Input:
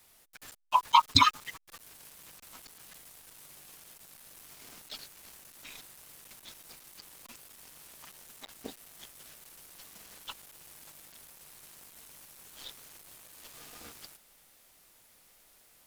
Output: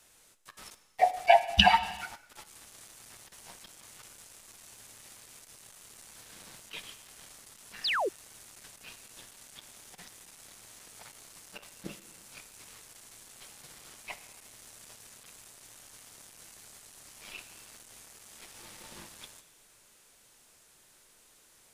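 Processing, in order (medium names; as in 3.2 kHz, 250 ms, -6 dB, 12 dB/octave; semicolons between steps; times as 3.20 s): gated-style reverb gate 320 ms falling, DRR 11 dB; tape speed -27%; painted sound fall, 7.84–8.09 s, 330–5500 Hz -29 dBFS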